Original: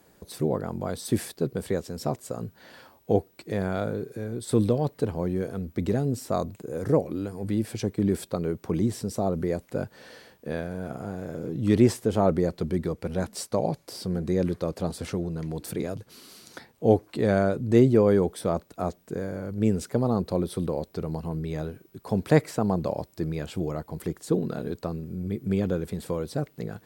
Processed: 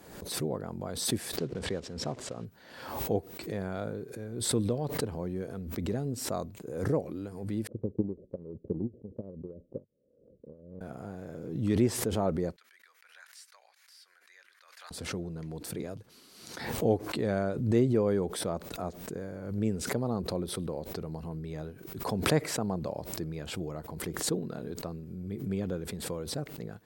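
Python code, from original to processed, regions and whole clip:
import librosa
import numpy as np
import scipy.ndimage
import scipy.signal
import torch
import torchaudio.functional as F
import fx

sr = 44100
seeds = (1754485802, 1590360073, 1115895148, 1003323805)

y = fx.chain(x, sr, fx.block_float(bits=5),
    fx.air_absorb(metres=96.0), at=(1.38, 2.45))
y = fx.chain(y, sr, fx.steep_lowpass(hz=590.0, slope=96),
    fx.transient(attack_db=7, sustain_db=-1),
    fx.upward_expand(threshold_db=-38.0, expansion=2.5), at=(7.67, 10.81))
y = fx.chain(y, sr, fx.ladder_highpass(hz=1400.0, resonance_pct=45),
    fx.notch(hz=7900.0, q=25.0), at=(12.56, 14.91))
y = fx.high_shelf(y, sr, hz=12000.0, db=-4.0)
y = fx.pre_swell(y, sr, db_per_s=59.0)
y = y * 10.0 ** (-7.5 / 20.0)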